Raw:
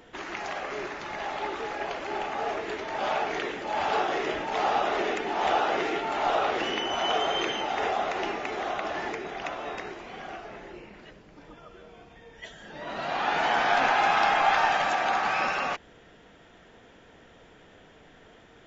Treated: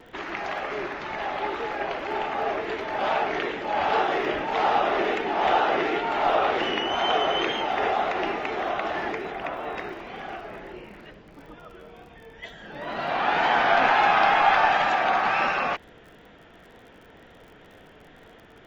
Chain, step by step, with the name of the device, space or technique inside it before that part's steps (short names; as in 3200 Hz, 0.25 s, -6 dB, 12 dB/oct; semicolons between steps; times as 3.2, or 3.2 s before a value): 9.32–9.76 high shelf 3900 Hz -10 dB; lo-fi chain (LPF 3900 Hz 12 dB/oct; wow and flutter; crackle 47/s -48 dBFS); gain +3.5 dB